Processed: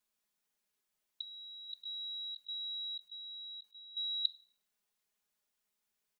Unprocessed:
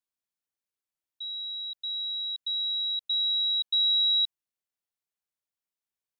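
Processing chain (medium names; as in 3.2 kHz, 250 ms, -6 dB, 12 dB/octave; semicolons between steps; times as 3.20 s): comb 4.8 ms, depth 92%; 1.69–3.97 s: compressor with a negative ratio -48 dBFS, ratio -0.5; plate-style reverb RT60 0.51 s, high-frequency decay 0.9×, DRR 14.5 dB; trim +4.5 dB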